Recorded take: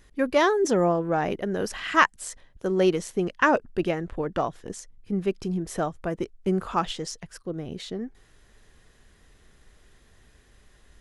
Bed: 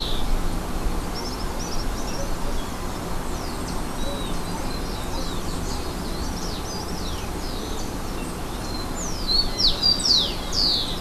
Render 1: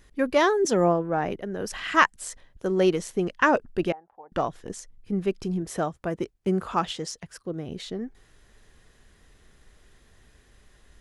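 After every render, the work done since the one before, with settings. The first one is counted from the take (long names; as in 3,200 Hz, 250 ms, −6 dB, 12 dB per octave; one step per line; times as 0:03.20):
0:00.65–0:01.73: multiband upward and downward expander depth 70%
0:03.92–0:04.32: resonant band-pass 820 Hz, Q 10
0:05.62–0:07.69: high-pass filter 51 Hz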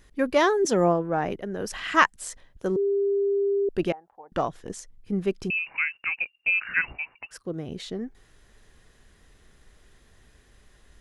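0:02.76–0:03.69: beep over 399 Hz −20.5 dBFS
0:05.50–0:07.31: voice inversion scrambler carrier 2,800 Hz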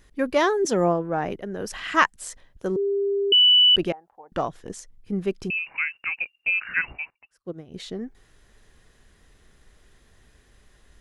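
0:03.32–0:03.76: beep over 2,970 Hz −12 dBFS
0:07.10–0:07.74: expander for the loud parts 2.5 to 1, over −42 dBFS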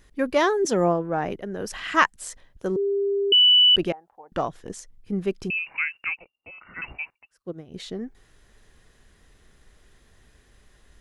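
0:06.17–0:06.82: Savitzky-Golay smoothing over 65 samples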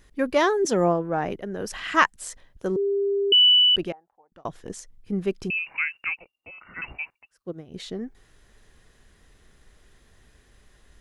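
0:03.46–0:04.45: fade out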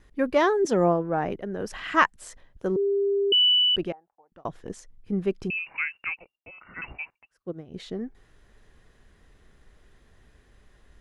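noise gate with hold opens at −55 dBFS
high-shelf EQ 3,500 Hz −9 dB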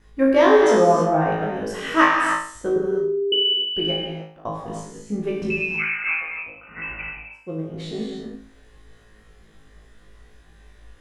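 on a send: flutter between parallel walls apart 3.2 metres, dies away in 0.47 s
on the sum: reverb whose tail is shaped and stops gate 340 ms flat, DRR 0 dB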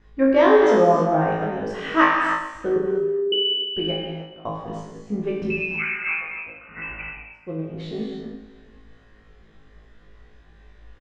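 high-frequency loss of the air 140 metres
repeating echo 426 ms, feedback 21%, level −20 dB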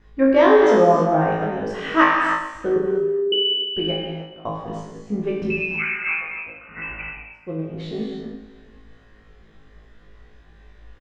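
level +1.5 dB
brickwall limiter −3 dBFS, peak gain reduction 1 dB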